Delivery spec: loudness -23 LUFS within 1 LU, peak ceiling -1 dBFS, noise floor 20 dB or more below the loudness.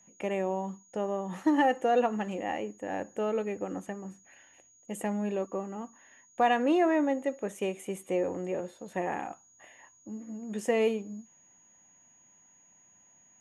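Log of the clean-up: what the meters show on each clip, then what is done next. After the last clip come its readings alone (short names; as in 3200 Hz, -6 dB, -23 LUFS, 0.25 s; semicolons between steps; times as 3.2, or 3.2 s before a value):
steady tone 6700 Hz; tone level -59 dBFS; loudness -31.0 LUFS; peak -14.0 dBFS; loudness target -23.0 LUFS
-> notch 6700 Hz, Q 30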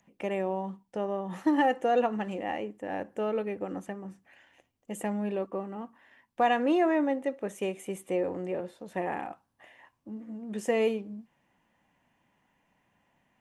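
steady tone none; loudness -31.0 LUFS; peak -14.0 dBFS; loudness target -23.0 LUFS
-> gain +8 dB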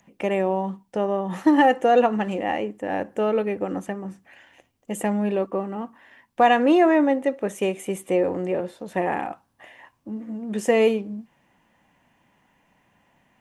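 loudness -23.0 LUFS; peak -6.0 dBFS; noise floor -67 dBFS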